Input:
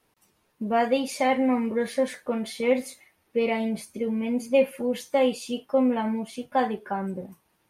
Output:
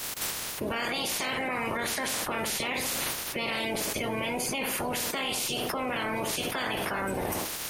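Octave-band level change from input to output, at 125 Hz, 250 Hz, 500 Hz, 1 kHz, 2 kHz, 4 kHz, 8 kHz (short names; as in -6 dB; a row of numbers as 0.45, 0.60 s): n/a, -9.5 dB, -9.0 dB, -3.5 dB, +4.0 dB, +8.0 dB, +11.0 dB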